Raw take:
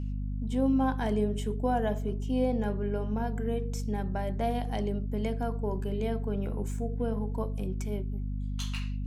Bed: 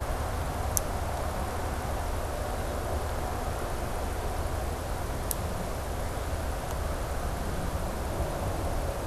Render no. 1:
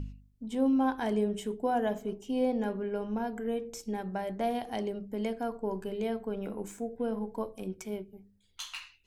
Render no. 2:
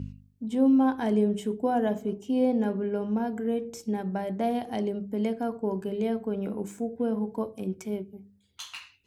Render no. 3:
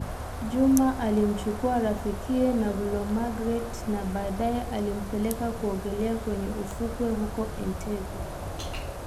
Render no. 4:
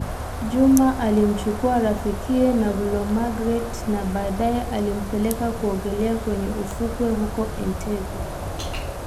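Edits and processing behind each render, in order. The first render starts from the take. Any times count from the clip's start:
hum removal 50 Hz, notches 5
high-pass filter 99 Hz 12 dB per octave; low-shelf EQ 390 Hz +8.5 dB
mix in bed −4 dB
level +5.5 dB; brickwall limiter −1 dBFS, peak gain reduction 1 dB

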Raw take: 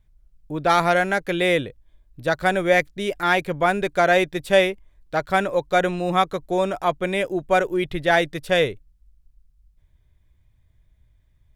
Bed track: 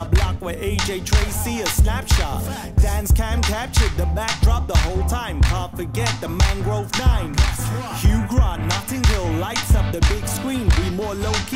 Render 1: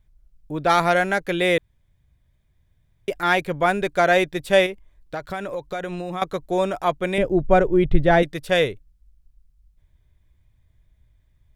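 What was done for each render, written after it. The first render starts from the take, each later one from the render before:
0:01.58–0:03.08: fill with room tone
0:04.66–0:06.22: downward compressor, threshold −25 dBFS
0:07.18–0:08.23: spectral tilt −3.5 dB per octave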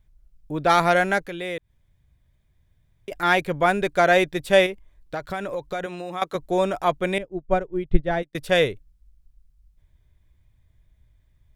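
0:01.25–0:03.12: downward compressor 1.5 to 1, threshold −46 dBFS
0:05.86–0:06.35: high-pass filter 370 Hz 6 dB per octave
0:07.18–0:08.35: expander for the loud parts 2.5 to 1, over −27 dBFS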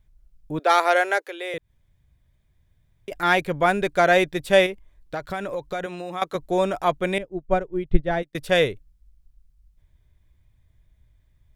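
0:00.59–0:01.54: Butterworth high-pass 360 Hz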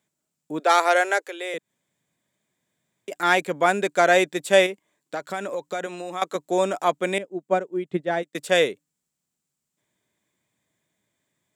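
high-pass filter 200 Hz 24 dB per octave
parametric band 7,500 Hz +12 dB 0.4 octaves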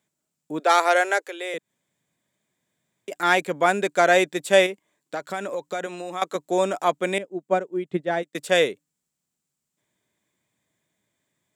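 no processing that can be heard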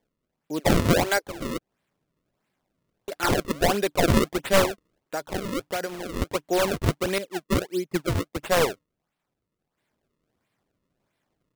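wavefolder on the positive side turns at −16 dBFS
sample-and-hold swept by an LFO 32×, swing 160% 1.5 Hz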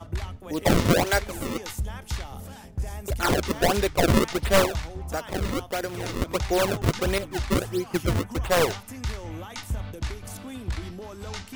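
mix in bed track −14.5 dB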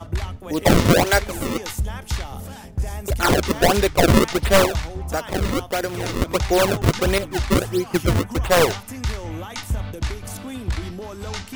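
level +5.5 dB
brickwall limiter −3 dBFS, peak gain reduction 2.5 dB

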